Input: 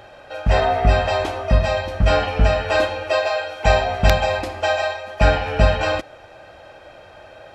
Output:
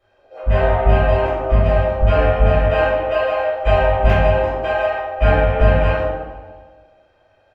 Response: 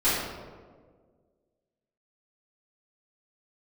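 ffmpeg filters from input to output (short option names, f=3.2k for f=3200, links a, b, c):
-filter_complex "[0:a]afwtdn=0.0447,aecho=1:1:147|294|441|588|735:0.106|0.0625|0.0369|0.0218|0.0128[a];[1:a]atrim=start_sample=2205,asetrate=57330,aresample=44100[b];[a][b]afir=irnorm=-1:irlink=0,volume=-12dB"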